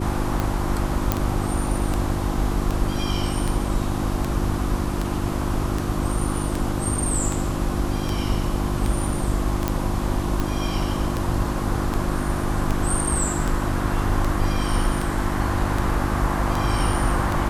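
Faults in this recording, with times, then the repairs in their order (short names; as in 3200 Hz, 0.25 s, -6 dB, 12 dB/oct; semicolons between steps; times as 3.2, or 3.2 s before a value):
hum 50 Hz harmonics 7 -27 dBFS
tick 78 rpm
1.12 pop -5 dBFS
9.68 pop -8 dBFS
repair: de-click; de-hum 50 Hz, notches 7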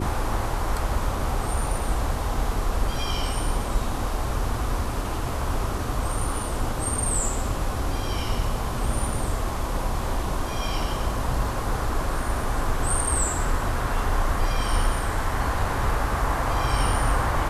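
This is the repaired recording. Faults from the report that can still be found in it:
none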